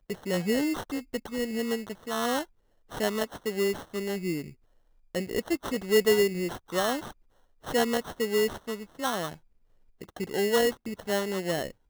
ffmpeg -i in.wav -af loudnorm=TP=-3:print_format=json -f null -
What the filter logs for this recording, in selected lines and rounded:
"input_i" : "-29.3",
"input_tp" : "-11.6",
"input_lra" : "3.1",
"input_thresh" : "-39.7",